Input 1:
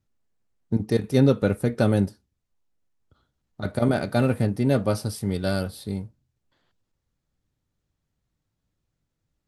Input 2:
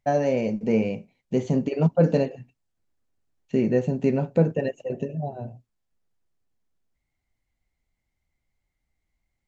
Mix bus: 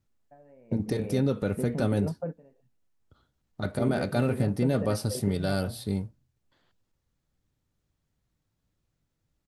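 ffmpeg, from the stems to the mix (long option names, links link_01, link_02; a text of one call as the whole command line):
ffmpeg -i stem1.wav -i stem2.wav -filter_complex "[0:a]alimiter=limit=-17.5dB:level=0:latency=1:release=92,volume=0.5dB,asplit=2[link_01][link_02];[1:a]lowpass=frequency=2100:width=0.5412,lowpass=frequency=2100:width=1.3066,acompressor=threshold=-23dB:ratio=12,adelay=250,volume=-6.5dB[link_03];[link_02]apad=whole_len=428829[link_04];[link_03][link_04]sidechaingate=range=-21dB:threshold=-58dB:ratio=16:detection=peak[link_05];[link_01][link_05]amix=inputs=2:normalize=0" out.wav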